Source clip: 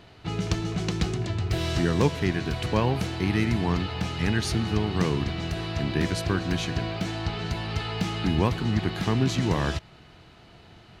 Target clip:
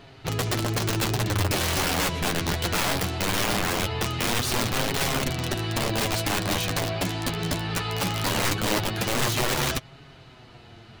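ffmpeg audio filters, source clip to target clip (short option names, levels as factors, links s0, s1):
-af "acontrast=61,aeval=exprs='(mod(5.96*val(0)+1,2)-1)/5.96':c=same,flanger=delay=7.2:depth=4.6:regen=27:speed=0.2:shape=triangular"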